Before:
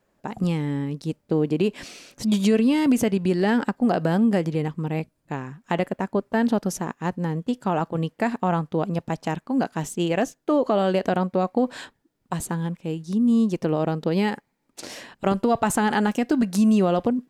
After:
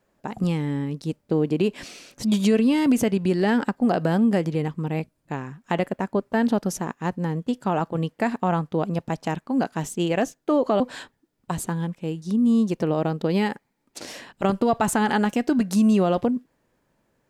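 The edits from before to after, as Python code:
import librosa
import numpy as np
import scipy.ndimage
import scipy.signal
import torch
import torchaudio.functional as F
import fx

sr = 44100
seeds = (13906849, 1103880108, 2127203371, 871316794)

y = fx.edit(x, sr, fx.cut(start_s=10.8, length_s=0.82), tone=tone)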